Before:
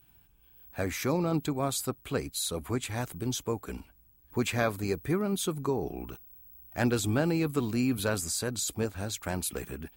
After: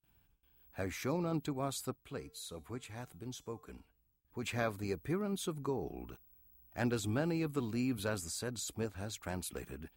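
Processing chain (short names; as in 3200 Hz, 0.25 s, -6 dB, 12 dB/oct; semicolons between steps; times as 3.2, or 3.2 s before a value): high shelf 7400 Hz -5 dB; gate with hold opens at -55 dBFS; 1.96–4.43 resonator 150 Hz, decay 0.52 s, harmonics odd, mix 50%; gain -7 dB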